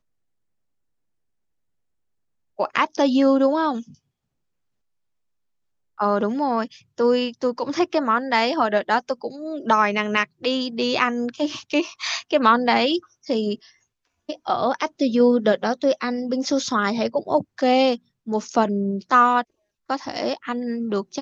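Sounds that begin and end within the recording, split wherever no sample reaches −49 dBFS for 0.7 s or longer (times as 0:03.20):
0:02.58–0:03.95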